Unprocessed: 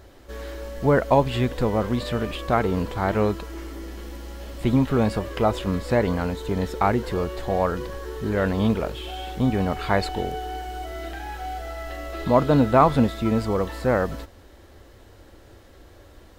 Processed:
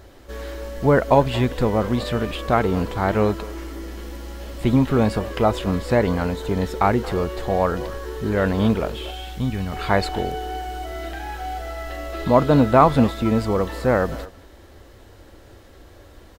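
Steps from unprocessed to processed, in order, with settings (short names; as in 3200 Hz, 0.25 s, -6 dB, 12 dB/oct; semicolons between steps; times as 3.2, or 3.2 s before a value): 9.1–9.72 bell 540 Hz -5 dB -> -14.5 dB 2.7 oct; speakerphone echo 0.23 s, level -17 dB; gain +2.5 dB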